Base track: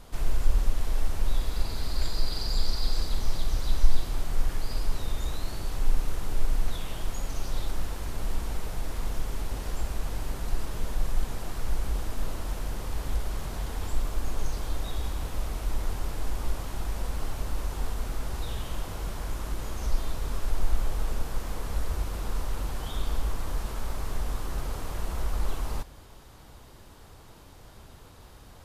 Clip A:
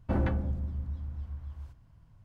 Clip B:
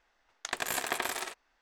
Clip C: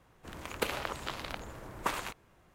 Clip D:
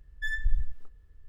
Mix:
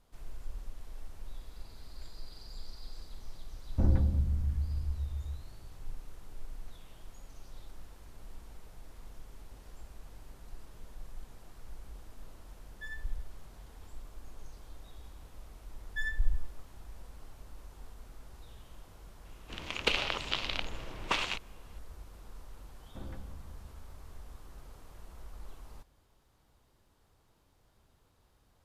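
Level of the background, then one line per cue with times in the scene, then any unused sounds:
base track -18.5 dB
3.69 s: add A -10 dB + tilt EQ -3.5 dB/octave
12.59 s: add D -11.5 dB
15.74 s: add D -3 dB
19.25 s: add C -0.5 dB + FFT filter 1.7 kHz 0 dB, 2.8 kHz +12 dB, 5.6 kHz +5 dB, 14 kHz -17 dB
22.86 s: add A -18 dB
not used: B

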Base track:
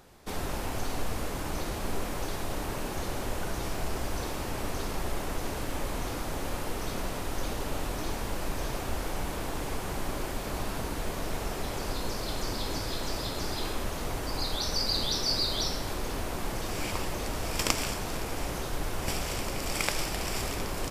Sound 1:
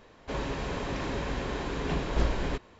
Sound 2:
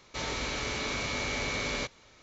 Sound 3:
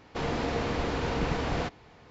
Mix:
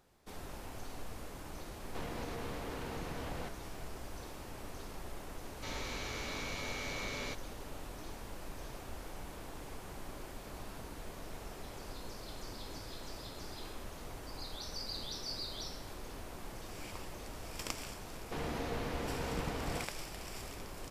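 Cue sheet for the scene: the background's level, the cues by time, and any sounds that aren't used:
base track -13 dB
1.80 s: add 3 -2.5 dB + compression, threshold -37 dBFS
5.48 s: add 2 -8.5 dB
18.16 s: add 3 -9 dB
not used: 1

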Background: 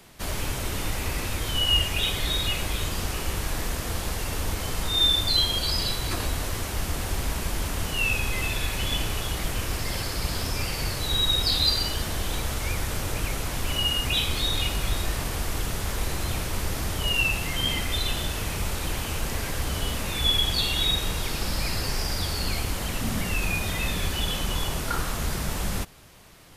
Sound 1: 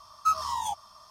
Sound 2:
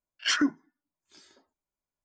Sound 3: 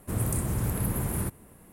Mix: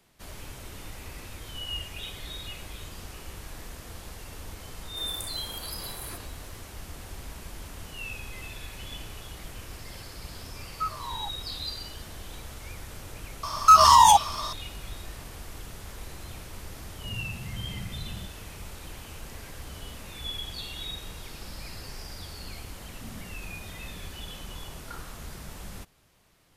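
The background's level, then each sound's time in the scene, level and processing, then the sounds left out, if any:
background -13 dB
4.88 s: add 3 -5 dB + high-pass 600 Hz
10.55 s: add 1 -6.5 dB + low-pass 3.1 kHz
13.43 s: add 1 -5.5 dB + loudness maximiser +24 dB
16.96 s: add 3 -8.5 dB + loudest bins only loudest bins 8
not used: 2

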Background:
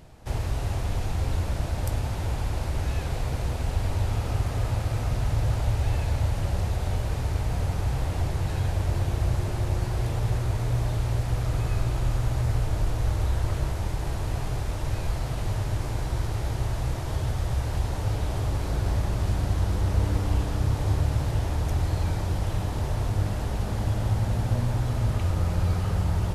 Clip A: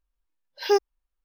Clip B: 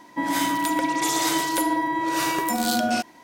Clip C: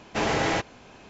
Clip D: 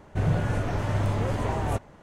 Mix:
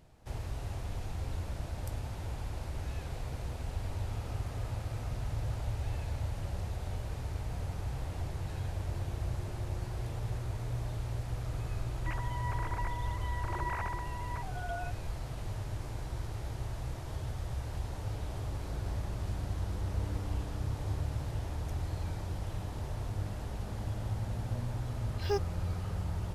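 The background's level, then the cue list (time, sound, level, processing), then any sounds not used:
background -10.5 dB
11.89 s: add B -17.5 dB + formants replaced by sine waves
24.60 s: add A -11.5 dB
not used: C, D

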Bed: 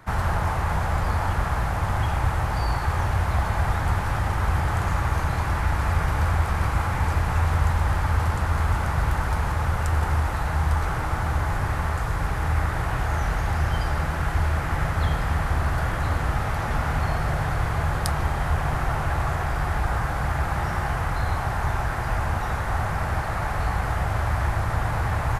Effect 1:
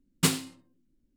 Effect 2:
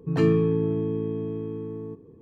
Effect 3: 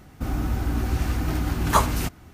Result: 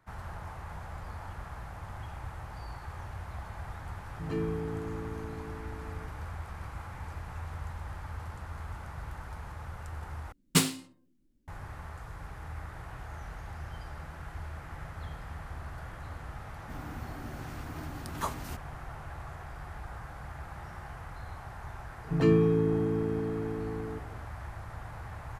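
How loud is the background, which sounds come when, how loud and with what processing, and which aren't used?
bed -18 dB
4.13 s: add 2 -12.5 dB
10.32 s: replace with 1
16.48 s: add 3 -15 dB + high-pass 97 Hz 24 dB/octave
22.04 s: add 2 -2.5 dB

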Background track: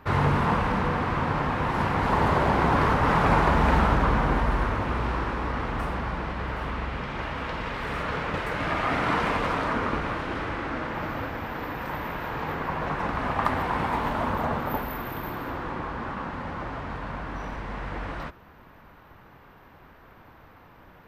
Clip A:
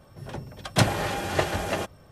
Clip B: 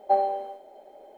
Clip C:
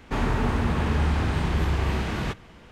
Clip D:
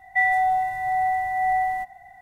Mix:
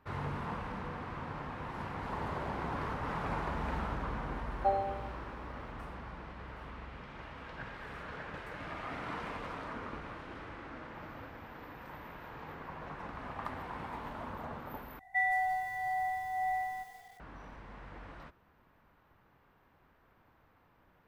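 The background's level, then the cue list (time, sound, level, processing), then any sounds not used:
background track -15.5 dB
4.55 s: add B -8 dB
6.81 s: add A -17.5 dB + four-pole ladder low-pass 1.7 kHz, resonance 85%
14.99 s: replace with D -10 dB + bit-crushed delay 173 ms, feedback 55%, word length 7-bit, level -9.5 dB
not used: C

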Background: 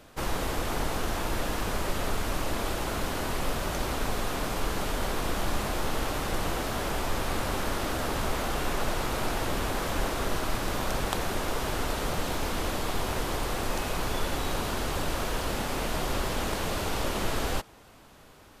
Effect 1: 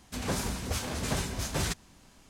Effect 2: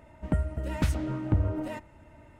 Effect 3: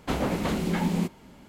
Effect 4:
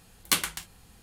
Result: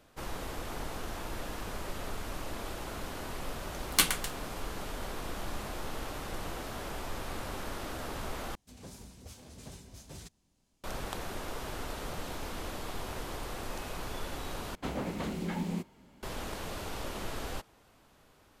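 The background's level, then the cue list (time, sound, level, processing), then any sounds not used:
background -9 dB
3.67 s: add 4 -0.5 dB
8.55 s: replace with 1 -16 dB + peaking EQ 1.5 kHz -7.5 dB 1.8 oct
14.75 s: replace with 3 -8.5 dB
not used: 2

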